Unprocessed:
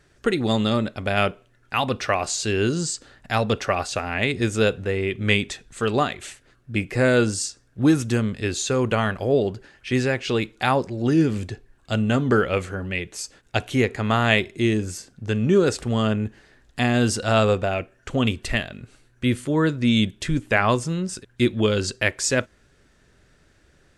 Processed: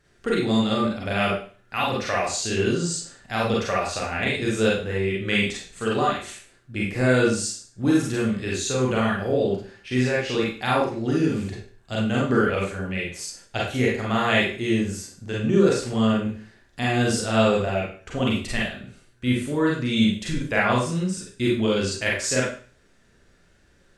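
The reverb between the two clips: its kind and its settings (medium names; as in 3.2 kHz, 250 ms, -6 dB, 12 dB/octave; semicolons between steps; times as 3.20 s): Schroeder reverb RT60 0.42 s, combs from 32 ms, DRR -4.5 dB; trim -6.5 dB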